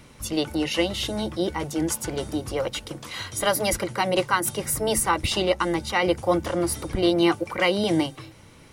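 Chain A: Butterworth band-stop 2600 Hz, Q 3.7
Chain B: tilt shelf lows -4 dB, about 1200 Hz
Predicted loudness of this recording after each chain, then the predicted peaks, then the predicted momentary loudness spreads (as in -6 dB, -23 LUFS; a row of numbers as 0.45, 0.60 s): -25.0, -24.5 LUFS; -8.5, -6.5 dBFS; 7, 9 LU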